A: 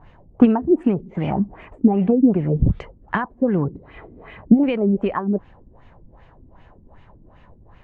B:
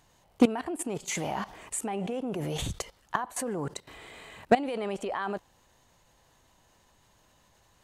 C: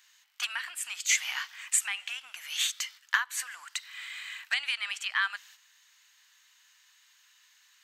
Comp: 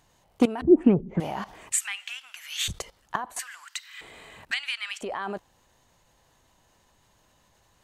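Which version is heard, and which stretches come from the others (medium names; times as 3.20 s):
B
0.62–1.20 s: from A
1.72–2.68 s: from C
3.39–4.01 s: from C
4.51–5.01 s: from C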